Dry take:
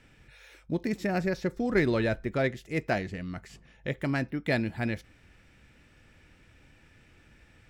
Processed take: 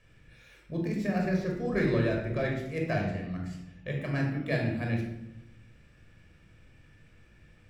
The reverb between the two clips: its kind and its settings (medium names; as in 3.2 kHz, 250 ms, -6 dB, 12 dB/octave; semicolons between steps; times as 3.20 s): simulated room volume 2600 m³, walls furnished, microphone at 5.7 m; trim -8 dB